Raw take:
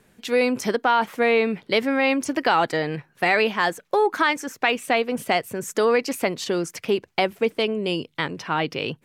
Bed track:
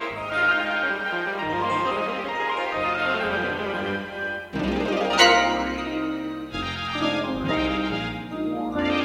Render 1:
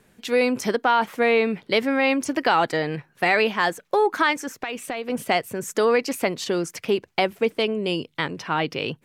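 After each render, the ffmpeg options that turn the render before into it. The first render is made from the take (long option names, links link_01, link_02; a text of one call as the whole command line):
ffmpeg -i in.wav -filter_complex "[0:a]asettb=1/sr,asplit=3[link_01][link_02][link_03];[link_01]atrim=end=4.474[link_04];[link_02]atrim=start=4.47:end=5.1,asetpts=PTS-STARTPTS,afade=type=in:duration=0.004:curve=qsin,afade=type=out:start_time=0.626:duration=0.004:curve=qsin,acompressor=threshold=-24dB:ratio=10:attack=3.2:release=140:knee=1:detection=peak[link_05];[link_03]atrim=start=5.096[link_06];[link_04][link_05]acrossfade=duration=0.004:curve1=hsin:curve2=qsin[link_07];[link_07][link_06]acrossfade=duration=0.004:curve1=qsin:curve2=hsin" out.wav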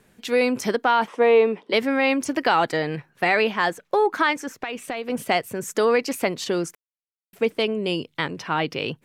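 ffmpeg -i in.wav -filter_complex "[0:a]asplit=3[link_01][link_02][link_03];[link_01]afade=type=out:start_time=1.06:duration=0.02[link_04];[link_02]highpass=frequency=230:width=0.5412,highpass=frequency=230:width=1.3066,equalizer=frequency=440:width_type=q:width=4:gain=5,equalizer=frequency=1000:width_type=q:width=4:gain=7,equalizer=frequency=1500:width_type=q:width=4:gain=-6,equalizer=frequency=2200:width_type=q:width=4:gain=-5,equalizer=frequency=4300:width_type=q:width=4:gain=-9,equalizer=frequency=7000:width_type=q:width=4:gain=-7,lowpass=frequency=8200:width=0.5412,lowpass=frequency=8200:width=1.3066,afade=type=in:start_time=1.06:duration=0.02,afade=type=out:start_time=1.72:duration=0.02[link_05];[link_03]afade=type=in:start_time=1.72:duration=0.02[link_06];[link_04][link_05][link_06]amix=inputs=3:normalize=0,asettb=1/sr,asplit=3[link_07][link_08][link_09];[link_07]atrim=end=3.104[link_10];[link_08]atrim=start=3.1:end=4.88,asetpts=PTS-STARTPTS,afade=type=in:duration=0.004:curve=qsin,afade=type=out:start_time=1.776:duration=0.004:curve=qsin,highshelf=frequency=5200:gain=-4.5[link_11];[link_09]atrim=start=4.876[link_12];[link_10][link_11]acrossfade=duration=0.004:curve1=hsin:curve2=qsin[link_13];[link_13][link_12]acrossfade=duration=0.004:curve1=qsin:curve2=hsin,asplit=3[link_14][link_15][link_16];[link_14]atrim=end=6.75,asetpts=PTS-STARTPTS,afade=type=out:start_time=6.746:duration=0.004:curve=hsin[link_17];[link_15]atrim=start=6.75:end=7.33,asetpts=PTS-STARTPTS,volume=0[link_18];[link_16]atrim=start=7.33,asetpts=PTS-STARTPTS,afade=type=in:duration=0.004:curve=hsin[link_19];[link_17][link_18][link_19]concat=n=3:v=0:a=1" out.wav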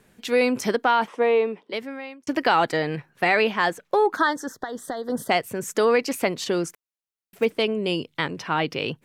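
ffmpeg -i in.wav -filter_complex "[0:a]asplit=3[link_01][link_02][link_03];[link_01]afade=type=out:start_time=4.15:duration=0.02[link_04];[link_02]asuperstop=centerf=2500:order=8:qfactor=1.7,afade=type=in:start_time=4.15:duration=0.02,afade=type=out:start_time=5.29:duration=0.02[link_05];[link_03]afade=type=in:start_time=5.29:duration=0.02[link_06];[link_04][link_05][link_06]amix=inputs=3:normalize=0,asplit=3[link_07][link_08][link_09];[link_07]afade=type=out:start_time=6.66:duration=0.02[link_10];[link_08]acrusher=bits=8:mode=log:mix=0:aa=0.000001,afade=type=in:start_time=6.66:duration=0.02,afade=type=out:start_time=7.44:duration=0.02[link_11];[link_09]afade=type=in:start_time=7.44:duration=0.02[link_12];[link_10][link_11][link_12]amix=inputs=3:normalize=0,asplit=2[link_13][link_14];[link_13]atrim=end=2.27,asetpts=PTS-STARTPTS,afade=type=out:start_time=0.83:duration=1.44[link_15];[link_14]atrim=start=2.27,asetpts=PTS-STARTPTS,afade=type=in:duration=0.004:curve=hsin[link_16];[link_15][link_16]concat=n=2:v=0:a=1" out.wav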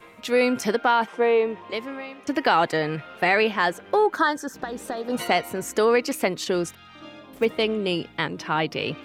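ffmpeg -i in.wav -i bed.wav -filter_complex "[1:a]volume=-19dB[link_01];[0:a][link_01]amix=inputs=2:normalize=0" out.wav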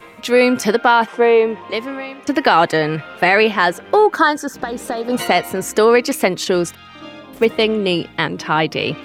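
ffmpeg -i in.wav -af "volume=7.5dB,alimiter=limit=-1dB:level=0:latency=1" out.wav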